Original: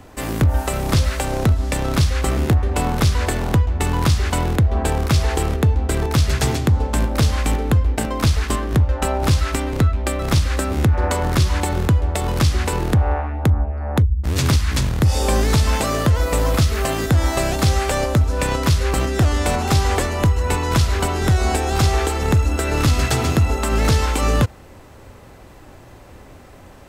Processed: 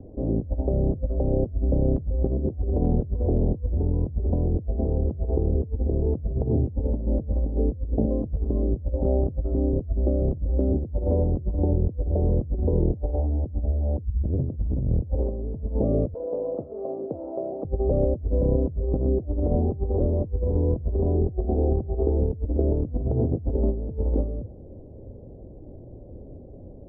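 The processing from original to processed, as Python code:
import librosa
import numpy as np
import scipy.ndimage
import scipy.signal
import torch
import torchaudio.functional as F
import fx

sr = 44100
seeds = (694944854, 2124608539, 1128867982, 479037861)

y = fx.bandpass_edges(x, sr, low_hz=550.0, high_hz=5600.0, at=(16.14, 17.65))
y = scipy.signal.sosfilt(scipy.signal.butter(6, 580.0, 'lowpass', fs=sr, output='sos'), y)
y = fx.over_compress(y, sr, threshold_db=-21.0, ratio=-0.5)
y = y * librosa.db_to_amplitude(-2.0)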